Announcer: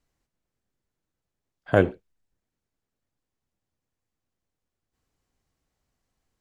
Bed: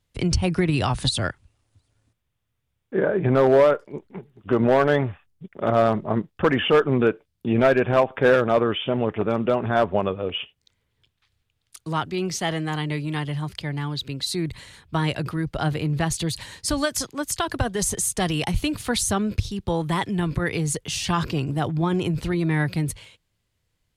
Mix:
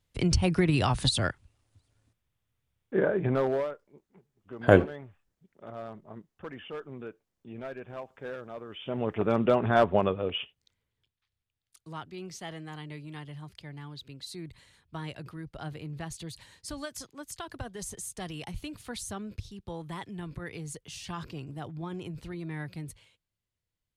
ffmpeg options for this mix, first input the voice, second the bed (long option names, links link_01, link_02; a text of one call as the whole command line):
ffmpeg -i stem1.wav -i stem2.wav -filter_complex "[0:a]adelay=2950,volume=0.5dB[link_01];[1:a]volume=17dB,afade=type=out:start_time=2.94:duration=0.81:silence=0.112202,afade=type=in:start_time=8.69:duration=0.68:silence=0.1,afade=type=out:start_time=10.02:duration=1.12:silence=0.223872[link_02];[link_01][link_02]amix=inputs=2:normalize=0" out.wav